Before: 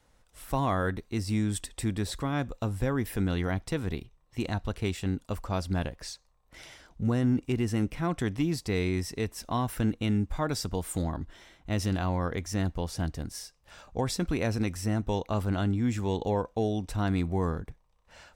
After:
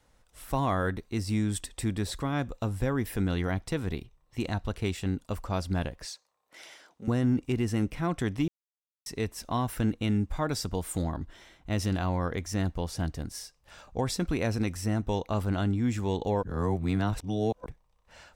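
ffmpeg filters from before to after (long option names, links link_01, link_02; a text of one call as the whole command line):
ffmpeg -i in.wav -filter_complex "[0:a]asettb=1/sr,asplit=3[link_01][link_02][link_03];[link_01]atrim=end=6.054[link_04];[link_02]atrim=start=6.05:end=7.08,asetpts=PTS-STARTPTS,afade=type=in:duration=0.004:curve=qsin,afade=type=out:start_time=1.026:duration=0.004:curve=qsin,highpass=350[link_05];[link_03]atrim=start=7.076[link_06];[link_04][link_05]acrossfade=duration=0.004:curve1=hsin:curve2=qsin[link_07];[link_07][link_06]acrossfade=duration=0.004:curve1=qsin:curve2=hsin,asplit=5[link_08][link_09][link_10][link_11][link_12];[link_08]atrim=end=8.48,asetpts=PTS-STARTPTS,afade=type=out:start_time=8.476:duration=0.004:curve=hsin[link_13];[link_09]atrim=start=8.48:end=9.06,asetpts=PTS-STARTPTS,volume=0[link_14];[link_10]atrim=start=9.06:end=16.432,asetpts=PTS-STARTPTS,afade=type=in:duration=0.004:curve=hsin[link_15];[link_11]atrim=start=16.428:end=17.662,asetpts=PTS-STARTPTS,areverse[link_16];[link_12]atrim=start=17.658[link_17];[link_13][link_14][link_15]concat=n=3:v=0:a=1[link_18];[link_18][link_16]acrossfade=duration=0.004:curve1=hsin:curve2=hsin[link_19];[link_19][link_17]acrossfade=duration=0.004:curve1=hsin:curve2=hsin" out.wav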